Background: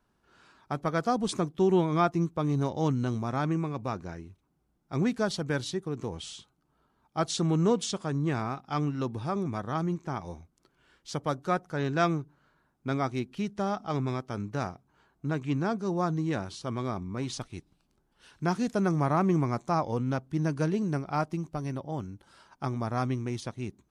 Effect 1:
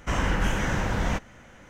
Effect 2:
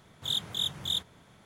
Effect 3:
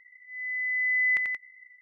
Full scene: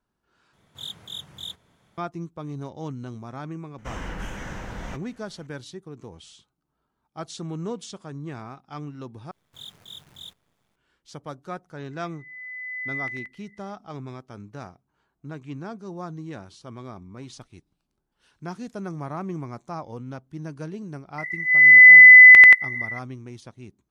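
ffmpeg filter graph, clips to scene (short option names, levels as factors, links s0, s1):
-filter_complex "[2:a]asplit=2[s0][s1];[3:a]asplit=2[s2][s3];[0:a]volume=0.447[s4];[1:a]equalizer=f=84:t=o:w=0.77:g=-3[s5];[s1]acrusher=bits=8:dc=4:mix=0:aa=0.000001[s6];[s3]alimiter=level_in=16.8:limit=0.891:release=50:level=0:latency=1[s7];[s4]asplit=3[s8][s9][s10];[s8]atrim=end=0.534[s11];[s0]atrim=end=1.45,asetpts=PTS-STARTPTS,volume=0.501[s12];[s9]atrim=start=1.976:end=9.314[s13];[s6]atrim=end=1.45,asetpts=PTS-STARTPTS,volume=0.251[s14];[s10]atrim=start=10.756[s15];[s5]atrim=end=1.69,asetpts=PTS-STARTPTS,volume=0.355,afade=t=in:d=0.004:c=hsin,afade=t=out:st=1.686:d=0.004:c=hsin,adelay=3780[s16];[s2]atrim=end=1.81,asetpts=PTS-STARTPTS,volume=0.447,afade=t=in:d=0.004:c=hsin,afade=t=out:st=1.806:d=0.004:c=hsin,adelay=11910[s17];[s7]atrim=end=1.81,asetpts=PTS-STARTPTS,volume=0.75,afade=t=in:d=0.004:c=hsin,afade=t=out:st=1.806:d=0.004:c=hsin,adelay=21180[s18];[s11][s12]acrossfade=d=0.004:c1=hsin:c2=hsin[s19];[s19][s13]acrossfade=d=0.004:c1=hsin:c2=hsin[s20];[s20][s14]acrossfade=d=0.004:c1=hsin:c2=hsin[s21];[s21][s15]acrossfade=d=0.004:c1=hsin:c2=hsin[s22];[s22][s16][s17][s18]amix=inputs=4:normalize=0"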